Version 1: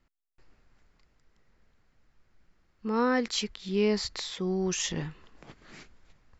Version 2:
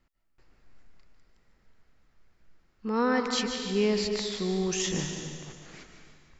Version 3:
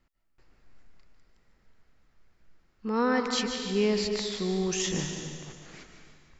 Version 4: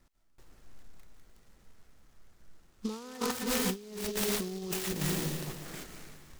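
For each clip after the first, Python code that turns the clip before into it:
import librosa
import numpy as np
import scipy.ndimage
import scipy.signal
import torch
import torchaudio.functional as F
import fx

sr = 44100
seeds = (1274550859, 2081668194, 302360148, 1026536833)

y1 = fx.echo_feedback(x, sr, ms=149, feedback_pct=54, wet_db=-12)
y1 = fx.rev_freeverb(y1, sr, rt60_s=1.7, hf_ratio=1.0, predelay_ms=115, drr_db=5.5)
y2 = y1
y3 = fx.over_compress(y2, sr, threshold_db=-33.0, ratio=-0.5)
y3 = fx.noise_mod_delay(y3, sr, seeds[0], noise_hz=4500.0, depth_ms=0.085)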